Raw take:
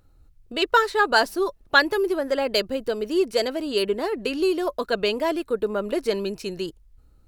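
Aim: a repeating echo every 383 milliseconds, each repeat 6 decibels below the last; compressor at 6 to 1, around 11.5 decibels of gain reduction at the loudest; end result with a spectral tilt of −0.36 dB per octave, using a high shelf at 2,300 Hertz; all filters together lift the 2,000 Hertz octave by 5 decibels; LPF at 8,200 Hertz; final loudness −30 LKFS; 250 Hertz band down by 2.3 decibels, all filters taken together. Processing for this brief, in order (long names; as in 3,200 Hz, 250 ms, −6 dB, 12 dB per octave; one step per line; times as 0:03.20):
low-pass filter 8,200 Hz
parametric band 250 Hz −4 dB
parametric band 2,000 Hz +4 dB
high-shelf EQ 2,300 Hz +6 dB
downward compressor 6 to 1, threshold −20 dBFS
repeating echo 383 ms, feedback 50%, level −6 dB
level −5 dB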